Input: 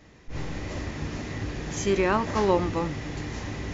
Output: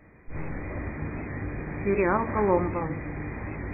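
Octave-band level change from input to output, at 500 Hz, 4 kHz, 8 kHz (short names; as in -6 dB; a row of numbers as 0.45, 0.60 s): -0.5 dB, under -40 dB, n/a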